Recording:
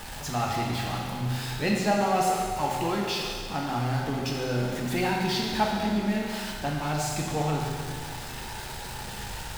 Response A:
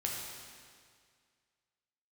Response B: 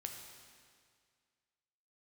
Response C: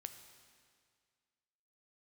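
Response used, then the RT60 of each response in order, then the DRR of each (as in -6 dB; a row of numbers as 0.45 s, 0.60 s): A; 2.0 s, 2.0 s, 2.0 s; -2.5 dB, 2.5 dB, 7.5 dB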